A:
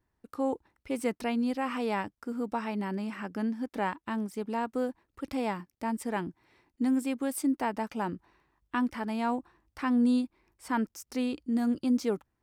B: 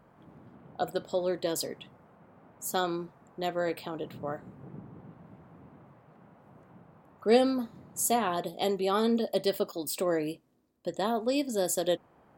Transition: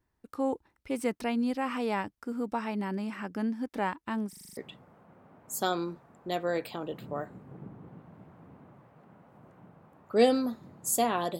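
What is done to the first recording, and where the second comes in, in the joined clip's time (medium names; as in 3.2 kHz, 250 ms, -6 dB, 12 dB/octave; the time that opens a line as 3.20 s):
A
4.29 s: stutter in place 0.04 s, 7 plays
4.57 s: go over to B from 1.69 s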